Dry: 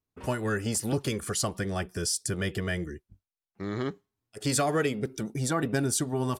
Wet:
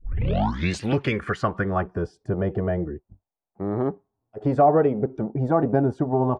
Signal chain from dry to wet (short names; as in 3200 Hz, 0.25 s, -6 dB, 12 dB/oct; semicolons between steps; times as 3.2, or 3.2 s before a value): tape start at the beginning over 0.86 s; low-pass sweep 2800 Hz -> 780 Hz, 0.79–2.17; gain +5.5 dB